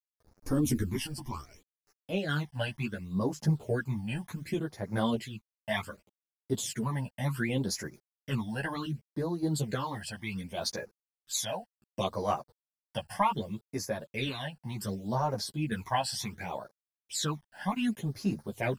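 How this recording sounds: a quantiser's noise floor 10-bit, dither none; phasing stages 12, 0.67 Hz, lowest notch 370–3200 Hz; random-step tremolo; a shimmering, thickened sound

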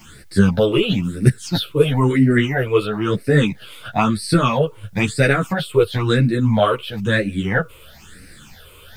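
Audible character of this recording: phasing stages 8, 1 Hz, lowest notch 220–1000 Hz; a quantiser's noise floor 12-bit, dither triangular; a shimmering, thickened sound

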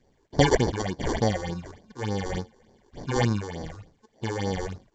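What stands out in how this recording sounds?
aliases and images of a low sample rate 1.3 kHz, jitter 0%; phasing stages 6, 3.4 Hz, lowest notch 160–2900 Hz; µ-law

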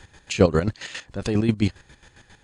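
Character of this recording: chopped level 7.4 Hz, depth 65%, duty 40%

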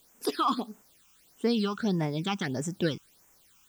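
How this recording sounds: a quantiser's noise floor 10-bit, dither triangular; phasing stages 8, 1.6 Hz, lowest notch 540–4200 Hz

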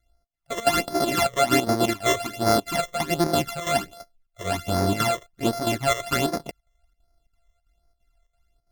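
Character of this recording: a buzz of ramps at a fixed pitch in blocks of 64 samples; chopped level 3 Hz, depth 65%, duty 80%; phasing stages 12, 1.3 Hz, lowest notch 250–2900 Hz; AC-3

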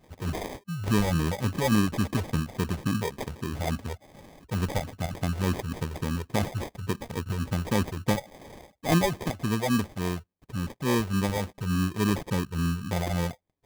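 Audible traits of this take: phasing stages 8, 3.5 Hz, lowest notch 240–2600 Hz; aliases and images of a low sample rate 1.4 kHz, jitter 0%

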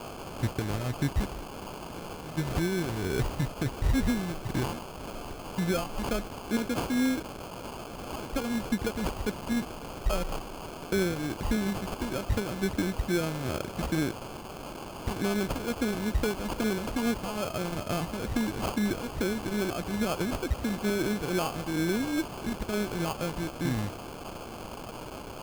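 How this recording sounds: a quantiser's noise floor 6-bit, dither triangular; phasing stages 2, 2.3 Hz, lowest notch 680–3500 Hz; aliases and images of a low sample rate 1.9 kHz, jitter 0%

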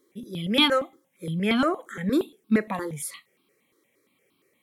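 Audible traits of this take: notches that jump at a steady rate 8.6 Hz 700–1900 Hz

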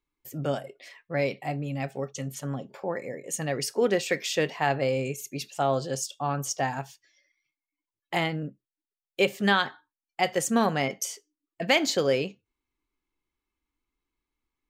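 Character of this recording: noise floor -93 dBFS; spectral tilt -4.0 dB/octave

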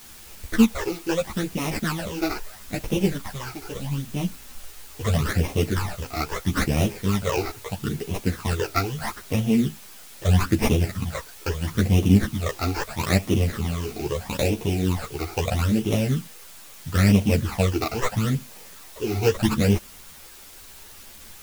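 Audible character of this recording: aliases and images of a low sample rate 3.2 kHz, jitter 20%; phasing stages 12, 0.77 Hz, lowest notch 170–1500 Hz; a quantiser's noise floor 8-bit, dither triangular; a shimmering, thickened sound

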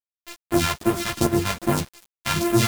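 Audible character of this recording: a buzz of ramps at a fixed pitch in blocks of 128 samples; phasing stages 2, 2.5 Hz, lowest notch 280–4800 Hz; a quantiser's noise floor 6-bit, dither none; a shimmering, thickened sound

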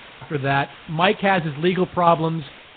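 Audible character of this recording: a quantiser's noise floor 6-bit, dither triangular; tremolo saw down 2.9 Hz, depth 45%; Nellymoser

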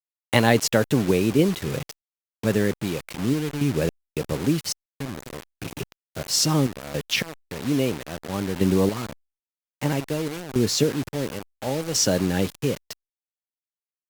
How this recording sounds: random-step tremolo 3.6 Hz, depth 100%; a quantiser's noise floor 6-bit, dither none; Opus

